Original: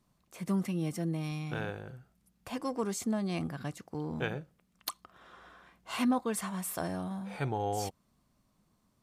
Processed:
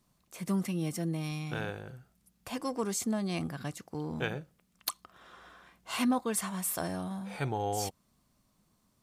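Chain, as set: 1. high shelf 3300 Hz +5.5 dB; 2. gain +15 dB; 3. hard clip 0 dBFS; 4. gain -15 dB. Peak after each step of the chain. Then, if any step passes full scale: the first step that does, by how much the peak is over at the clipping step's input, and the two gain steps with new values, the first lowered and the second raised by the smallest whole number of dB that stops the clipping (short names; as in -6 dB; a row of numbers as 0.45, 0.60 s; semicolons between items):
-9.5, +5.5, 0.0, -15.0 dBFS; step 2, 5.5 dB; step 2 +9 dB, step 4 -9 dB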